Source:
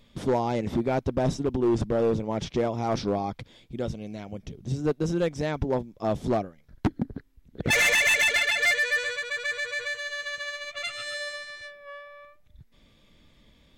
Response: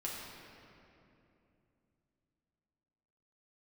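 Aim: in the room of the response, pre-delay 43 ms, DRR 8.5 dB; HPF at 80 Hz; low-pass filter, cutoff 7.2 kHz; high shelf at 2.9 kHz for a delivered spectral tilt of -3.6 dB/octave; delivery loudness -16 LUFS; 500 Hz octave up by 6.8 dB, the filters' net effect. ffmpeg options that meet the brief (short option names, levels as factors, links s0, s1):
-filter_complex "[0:a]highpass=80,lowpass=7200,equalizer=f=500:t=o:g=8,highshelf=f=2900:g=9,asplit=2[s0][s1];[1:a]atrim=start_sample=2205,adelay=43[s2];[s1][s2]afir=irnorm=-1:irlink=0,volume=0.316[s3];[s0][s3]amix=inputs=2:normalize=0,volume=1.88"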